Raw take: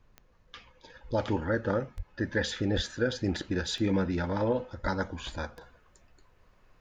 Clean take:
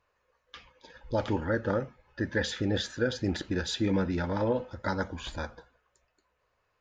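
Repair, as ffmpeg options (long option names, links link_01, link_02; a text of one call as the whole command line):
ffmpeg -i in.wav -filter_complex "[0:a]adeclick=threshold=4,asplit=3[link_01][link_02][link_03];[link_01]afade=type=out:start_time=1.96:duration=0.02[link_04];[link_02]highpass=frequency=140:width=0.5412,highpass=frequency=140:width=1.3066,afade=type=in:start_time=1.96:duration=0.02,afade=type=out:start_time=2.08:duration=0.02[link_05];[link_03]afade=type=in:start_time=2.08:duration=0.02[link_06];[link_04][link_05][link_06]amix=inputs=3:normalize=0,asplit=3[link_07][link_08][link_09];[link_07]afade=type=out:start_time=2.75:duration=0.02[link_10];[link_08]highpass=frequency=140:width=0.5412,highpass=frequency=140:width=1.3066,afade=type=in:start_time=2.75:duration=0.02,afade=type=out:start_time=2.87:duration=0.02[link_11];[link_09]afade=type=in:start_time=2.87:duration=0.02[link_12];[link_10][link_11][link_12]amix=inputs=3:normalize=0,asplit=3[link_13][link_14][link_15];[link_13]afade=type=out:start_time=4.82:duration=0.02[link_16];[link_14]highpass=frequency=140:width=0.5412,highpass=frequency=140:width=1.3066,afade=type=in:start_time=4.82:duration=0.02,afade=type=out:start_time=4.94:duration=0.02[link_17];[link_15]afade=type=in:start_time=4.94:duration=0.02[link_18];[link_16][link_17][link_18]amix=inputs=3:normalize=0,agate=range=-21dB:threshold=-54dB,asetnsamples=nb_out_samples=441:pad=0,asendcmd='5.61 volume volume -7dB',volume=0dB" out.wav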